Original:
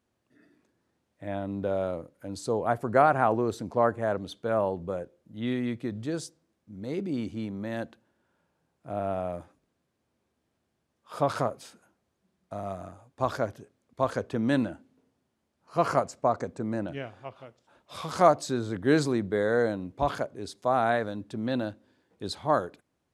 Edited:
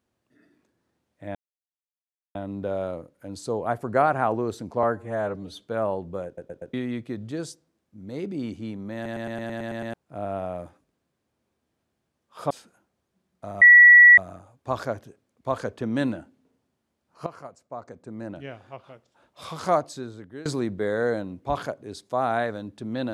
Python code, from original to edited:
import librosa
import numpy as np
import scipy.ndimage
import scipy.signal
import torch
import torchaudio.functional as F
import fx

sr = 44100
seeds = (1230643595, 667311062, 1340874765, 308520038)

y = fx.edit(x, sr, fx.insert_silence(at_s=1.35, length_s=1.0),
    fx.stretch_span(start_s=3.83, length_s=0.51, factor=1.5),
    fx.stutter_over(start_s=5.0, slice_s=0.12, count=4),
    fx.stutter_over(start_s=7.69, slice_s=0.11, count=9),
    fx.cut(start_s=11.25, length_s=0.34),
    fx.insert_tone(at_s=12.7, length_s=0.56, hz=1940.0, db=-7.5),
    fx.fade_in_from(start_s=15.79, length_s=1.36, curve='qua', floor_db=-17.5),
    fx.fade_out_to(start_s=18.03, length_s=0.95, floor_db=-22.5), tone=tone)